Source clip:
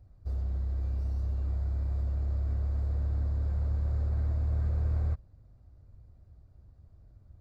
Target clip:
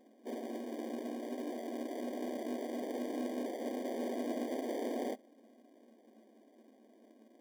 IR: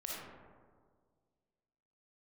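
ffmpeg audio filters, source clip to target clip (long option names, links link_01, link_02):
-filter_complex "[0:a]afftfilt=real='re*between(b*sr/4096,210,790)':imag='im*between(b*sr/4096,210,790)':win_size=4096:overlap=0.75,asplit=2[link_01][link_02];[link_02]acrusher=samples=33:mix=1:aa=0.000001,volume=-6.5dB[link_03];[link_01][link_03]amix=inputs=2:normalize=0,volume=10.5dB"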